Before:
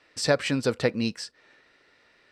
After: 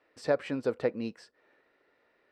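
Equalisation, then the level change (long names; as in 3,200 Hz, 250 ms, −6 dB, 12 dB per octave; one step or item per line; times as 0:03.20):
bass and treble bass −13 dB, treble −13 dB
tilt shelving filter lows +7 dB, about 1,100 Hz
high-shelf EQ 8,000 Hz +12 dB
−7.0 dB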